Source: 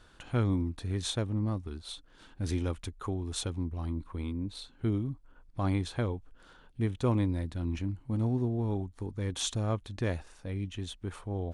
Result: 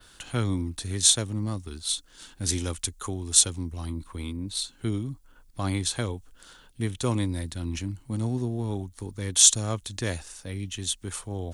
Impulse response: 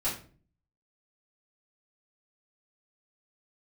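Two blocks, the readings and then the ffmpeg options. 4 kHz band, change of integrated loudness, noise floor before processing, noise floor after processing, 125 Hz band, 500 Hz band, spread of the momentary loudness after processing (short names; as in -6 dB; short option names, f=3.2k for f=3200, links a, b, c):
+12.5 dB, +7.0 dB, -58 dBFS, -56 dBFS, +1.0 dB, +1.0 dB, 16 LU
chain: -filter_complex "[0:a]bandreject=f=2.4k:w=26,acrossover=split=130|850[a][b][c];[c]crystalizer=i=5:c=0[d];[a][b][d]amix=inputs=3:normalize=0,volume=11dB,asoftclip=hard,volume=-11dB,adynamicequalizer=threshold=0.00631:dfrequency=7100:dqfactor=1.1:tfrequency=7100:tqfactor=1.1:attack=5:release=100:ratio=0.375:range=3:mode=boostabove:tftype=bell,volume=1dB"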